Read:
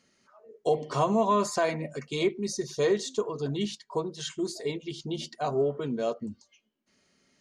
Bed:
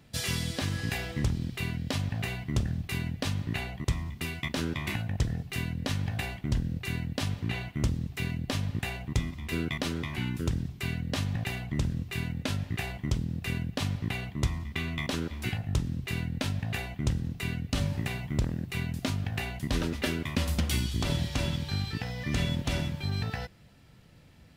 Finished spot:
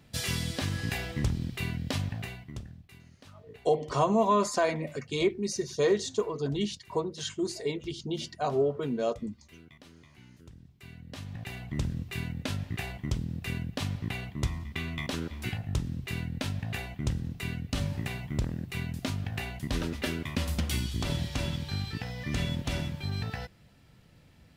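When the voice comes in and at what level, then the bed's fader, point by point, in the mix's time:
3.00 s, 0.0 dB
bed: 2.02 s -0.5 dB
3.01 s -22 dB
10.49 s -22 dB
11.79 s -2 dB

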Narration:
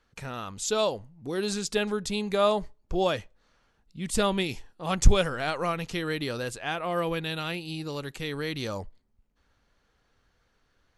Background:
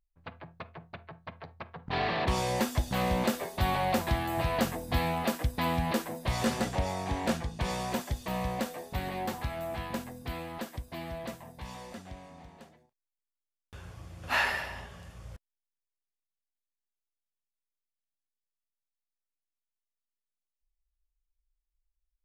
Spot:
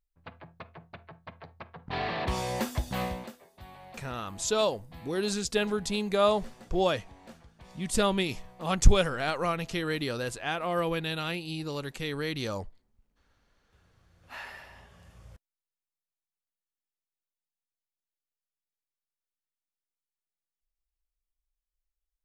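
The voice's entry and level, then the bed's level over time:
3.80 s, -0.5 dB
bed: 3.03 s -2 dB
3.37 s -20.5 dB
13.97 s -20.5 dB
15.14 s -5.5 dB

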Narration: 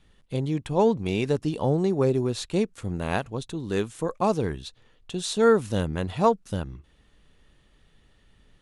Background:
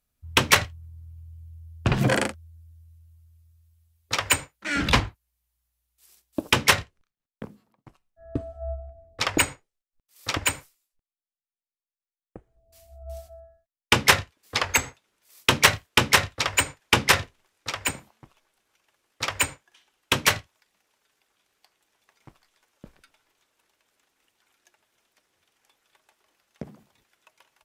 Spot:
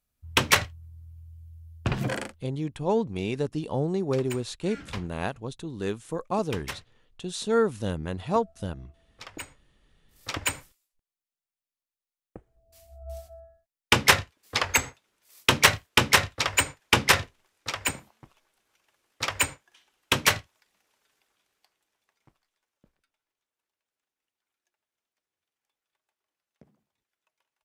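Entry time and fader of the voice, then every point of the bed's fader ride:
2.10 s, -4.0 dB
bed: 1.75 s -2.5 dB
2.75 s -18.5 dB
9.36 s -18.5 dB
10.67 s -1 dB
21.16 s -1 dB
23.06 s -19.5 dB

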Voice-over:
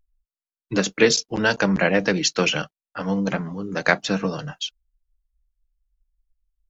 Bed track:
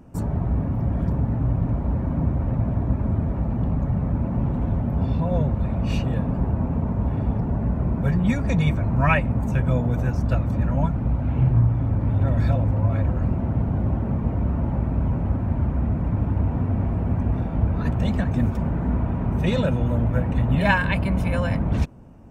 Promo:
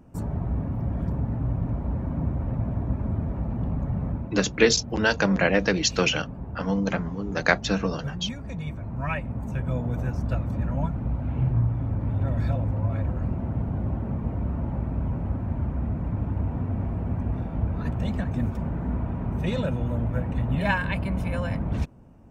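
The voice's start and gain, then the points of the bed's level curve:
3.60 s, -2.0 dB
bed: 4.1 s -4.5 dB
4.36 s -13 dB
8.58 s -13 dB
9.98 s -5 dB

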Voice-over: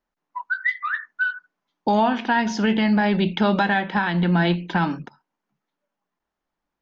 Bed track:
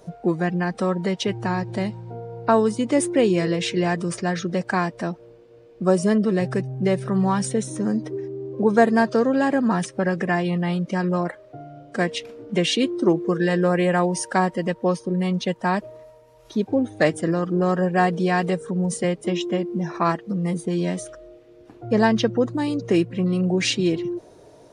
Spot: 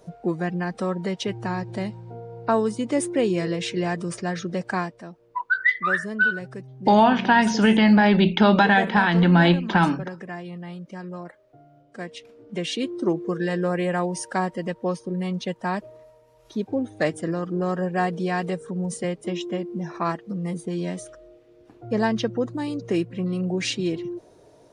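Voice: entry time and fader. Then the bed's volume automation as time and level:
5.00 s, +3.0 dB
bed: 4.8 s -3.5 dB
5.02 s -13 dB
11.94 s -13 dB
13 s -4.5 dB

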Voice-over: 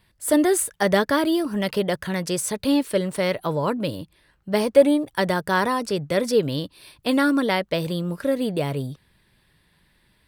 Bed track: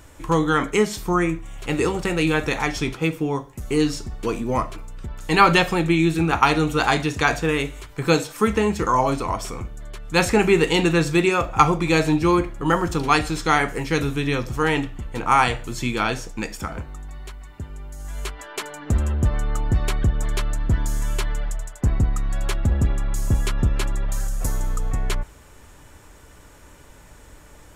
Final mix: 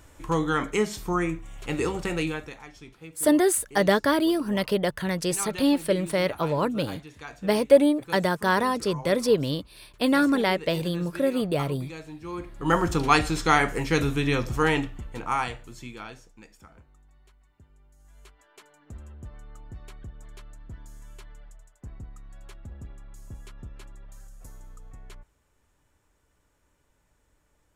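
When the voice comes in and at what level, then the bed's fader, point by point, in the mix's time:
2.95 s, -1.5 dB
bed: 2.19 s -5.5 dB
2.62 s -22 dB
12.2 s -22 dB
12.75 s -1.5 dB
14.65 s -1.5 dB
16.4 s -22 dB

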